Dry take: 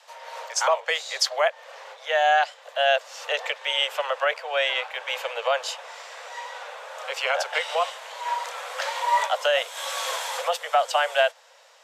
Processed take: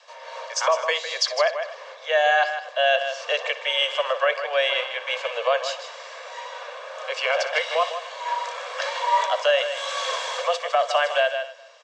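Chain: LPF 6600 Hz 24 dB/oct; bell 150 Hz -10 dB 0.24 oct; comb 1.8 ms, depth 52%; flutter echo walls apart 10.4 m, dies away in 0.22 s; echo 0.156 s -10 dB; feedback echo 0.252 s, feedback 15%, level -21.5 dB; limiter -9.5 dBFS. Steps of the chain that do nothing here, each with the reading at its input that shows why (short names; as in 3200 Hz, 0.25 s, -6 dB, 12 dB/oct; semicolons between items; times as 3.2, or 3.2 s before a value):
bell 150 Hz: input band starts at 380 Hz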